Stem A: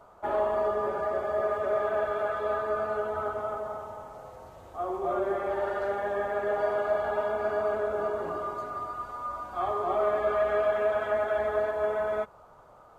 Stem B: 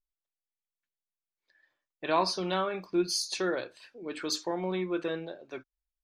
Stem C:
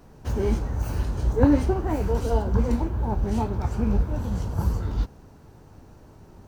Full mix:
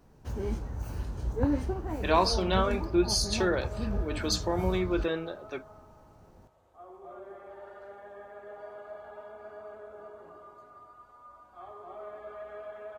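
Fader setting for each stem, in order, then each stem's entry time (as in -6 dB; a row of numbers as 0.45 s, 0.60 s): -17.0 dB, +2.5 dB, -9.0 dB; 2.00 s, 0.00 s, 0.00 s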